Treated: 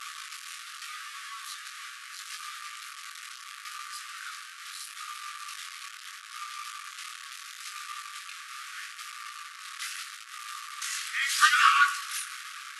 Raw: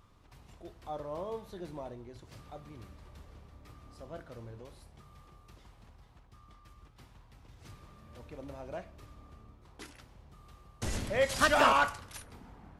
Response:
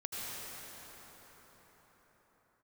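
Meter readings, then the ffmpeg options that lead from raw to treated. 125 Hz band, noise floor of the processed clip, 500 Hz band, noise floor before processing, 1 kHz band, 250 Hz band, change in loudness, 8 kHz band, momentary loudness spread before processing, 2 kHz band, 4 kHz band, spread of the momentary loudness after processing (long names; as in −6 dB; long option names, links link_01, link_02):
below −40 dB, −46 dBFS, below −40 dB, −60 dBFS, +4.0 dB, below −40 dB, 0.0 dB, +10.5 dB, 26 LU, +7.5 dB, +9.0 dB, 17 LU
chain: -af "aeval=exprs='val(0)+0.5*0.0168*sgn(val(0))':channel_layout=same,afftfilt=real='re*between(b*sr/4096,1100,12000)':imag='im*between(b*sr/4096,1100,12000)':win_size=4096:overlap=0.75,areverse,acompressor=mode=upward:threshold=-48dB:ratio=2.5,areverse,flanger=delay=16.5:depth=7.3:speed=0.76,volume=9dB"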